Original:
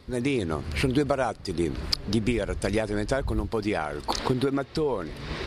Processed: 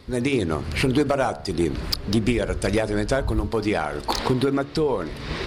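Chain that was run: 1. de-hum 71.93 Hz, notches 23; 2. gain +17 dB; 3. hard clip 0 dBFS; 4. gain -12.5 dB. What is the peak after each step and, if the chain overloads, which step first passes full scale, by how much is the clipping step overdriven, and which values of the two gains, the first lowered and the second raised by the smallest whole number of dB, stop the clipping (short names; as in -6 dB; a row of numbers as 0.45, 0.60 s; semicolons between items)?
-8.0, +9.0, 0.0, -12.5 dBFS; step 2, 9.0 dB; step 2 +8 dB, step 4 -3.5 dB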